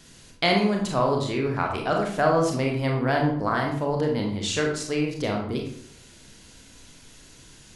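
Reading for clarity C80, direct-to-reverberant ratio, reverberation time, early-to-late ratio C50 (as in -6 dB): 8.5 dB, 0.0 dB, 0.65 s, 4.5 dB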